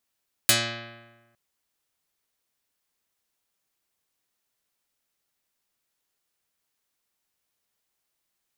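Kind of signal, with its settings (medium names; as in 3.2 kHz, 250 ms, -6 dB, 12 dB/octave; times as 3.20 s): plucked string A#2, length 0.86 s, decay 1.26 s, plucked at 0.26, dark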